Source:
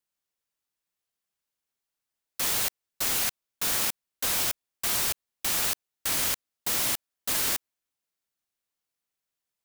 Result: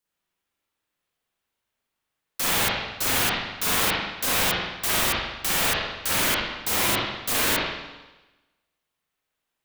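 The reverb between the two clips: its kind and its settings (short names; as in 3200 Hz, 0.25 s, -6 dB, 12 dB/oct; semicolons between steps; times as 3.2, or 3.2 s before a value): spring tank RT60 1.1 s, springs 39/50 ms, chirp 30 ms, DRR -7.5 dB; gain +1.5 dB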